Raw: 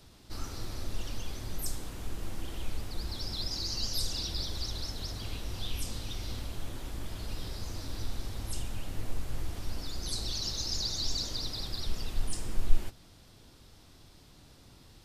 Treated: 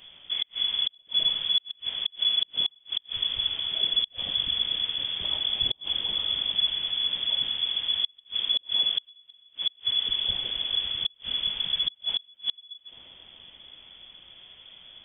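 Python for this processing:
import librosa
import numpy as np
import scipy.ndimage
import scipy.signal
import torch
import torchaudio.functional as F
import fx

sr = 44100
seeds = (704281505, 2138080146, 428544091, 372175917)

y = fx.freq_invert(x, sr, carrier_hz=3400)
y = fx.echo_bbd(y, sr, ms=140, stages=1024, feedback_pct=85, wet_db=-15.5)
y = fx.gate_flip(y, sr, shuts_db=-20.0, range_db=-35)
y = y * librosa.db_to_amplitude(5.5)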